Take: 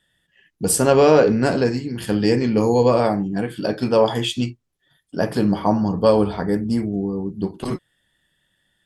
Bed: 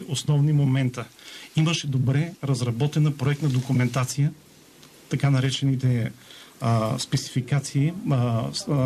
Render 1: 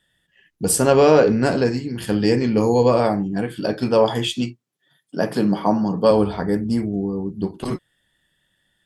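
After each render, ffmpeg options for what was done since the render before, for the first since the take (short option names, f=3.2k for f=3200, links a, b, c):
-filter_complex "[0:a]asettb=1/sr,asplit=3[a][b][c];[a]atrim=end=4.274[d];[b]atrim=start=4.27:end=6.11,asetpts=PTS-STARTPTS,afade=t=in:d=0.004:c=qsin,afade=t=out:st=1.836:d=0.004:c=qsin,highpass=f=130:w=0.5412,highpass=f=130:w=1.3066[e];[c]atrim=start=6.106[f];[d][e]acrossfade=d=0.004:c1=hsin:c2=qsin[g];[g][f]acrossfade=d=0.004:c1=qsin:c2=hsin"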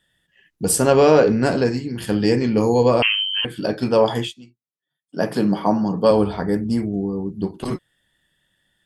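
-filter_complex "[0:a]asettb=1/sr,asplit=3[a][b][c];[a]atrim=end=3.024[d];[b]atrim=start=3.02:end=3.45,asetpts=PTS-STARTPTS,afade=t=in:d=0.004:c=qsin,afade=t=out:st=0.426:d=0.004:c=qsin,lowpass=f=2.8k:t=q:w=0.5098,lowpass=f=2.8k:t=q:w=0.6013,lowpass=f=2.8k:t=q:w=0.9,lowpass=f=2.8k:t=q:w=2.563,afreqshift=-3300[e];[c]atrim=start=3.446[f];[d][e]acrossfade=d=0.004:c1=hsin:c2=qsin[g];[g][f]acrossfade=d=0.004:c1=qsin:c2=hsin,asplit=3[h][i][j];[h]atrim=end=4.34,asetpts=PTS-STARTPTS,afade=t=out:st=4.2:d=0.14:silence=0.0944061[k];[i]atrim=start=4.34:end=5.07,asetpts=PTS-STARTPTS,volume=-20.5dB[l];[j]atrim=start=5.07,asetpts=PTS-STARTPTS,afade=t=in:d=0.14:silence=0.0944061[m];[k][l][m]concat=n=3:v=0:a=1"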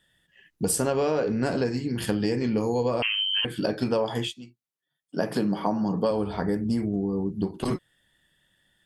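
-af "acompressor=threshold=-22dB:ratio=6"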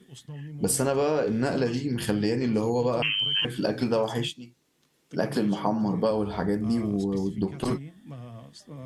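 -filter_complex "[1:a]volume=-19dB[a];[0:a][a]amix=inputs=2:normalize=0"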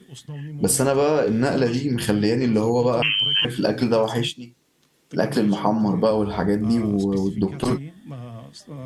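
-af "volume=5.5dB"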